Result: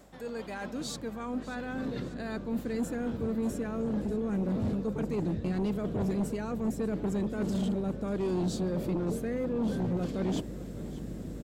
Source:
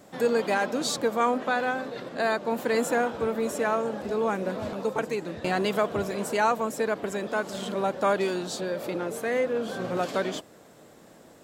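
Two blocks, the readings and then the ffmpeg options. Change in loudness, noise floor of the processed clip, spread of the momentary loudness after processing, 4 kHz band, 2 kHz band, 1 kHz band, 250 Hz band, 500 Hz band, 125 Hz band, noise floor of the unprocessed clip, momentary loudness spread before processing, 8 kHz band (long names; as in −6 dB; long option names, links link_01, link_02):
−5.0 dB, −42 dBFS, 7 LU, −10.5 dB, −14.0 dB, −15.0 dB, +2.0 dB, −8.5 dB, +6.0 dB, −53 dBFS, 6 LU, −9.5 dB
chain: -af "areverse,acompressor=threshold=-36dB:ratio=6,areverse,aeval=exprs='val(0)+0.000708*(sin(2*PI*50*n/s)+sin(2*PI*2*50*n/s)/2+sin(2*PI*3*50*n/s)/3+sin(2*PI*4*50*n/s)/4+sin(2*PI*5*50*n/s)/5)':channel_layout=same,asubboost=boost=11.5:cutoff=250,aeval=exprs='0.141*sin(PI/2*1.78*val(0)/0.141)':channel_layout=same,aecho=1:1:591|1182|1773|2364|2955:0.141|0.0777|0.0427|0.0235|0.0129,volume=-8.5dB"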